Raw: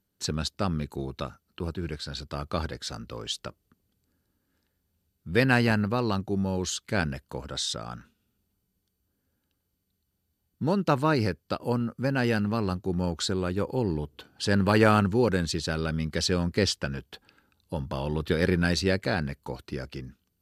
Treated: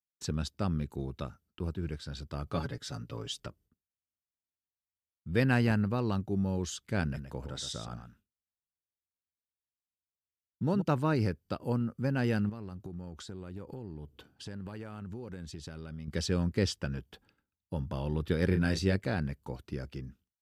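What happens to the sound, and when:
2.46–3.47 comb 7.1 ms, depth 72%
7.02–10.82 echo 0.12 s -8.5 dB
12.49–16.08 compressor 10:1, threshold -34 dBFS
18.47–18.96 doubler 31 ms -8 dB
whole clip: expander -53 dBFS; low shelf 300 Hz +7.5 dB; notch 4200 Hz, Q 11; gain -8 dB

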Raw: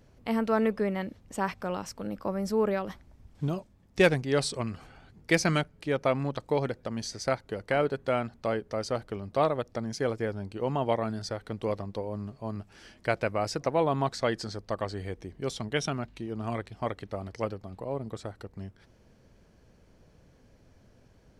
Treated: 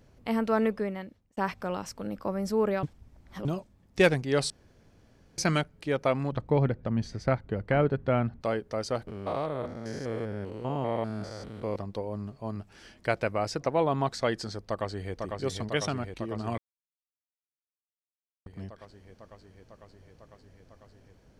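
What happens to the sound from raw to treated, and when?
0.64–1.37 fade out
2.83–3.45 reverse
4.5–5.38 room tone
6.32–8.41 tone controls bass +10 dB, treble -15 dB
9.07–11.76 stepped spectrum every 0.2 s
13.39–14.09 high shelf 8600 Hz -5.5 dB
14.61–15.14 echo throw 0.5 s, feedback 80%, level -4 dB
16.58–18.46 mute

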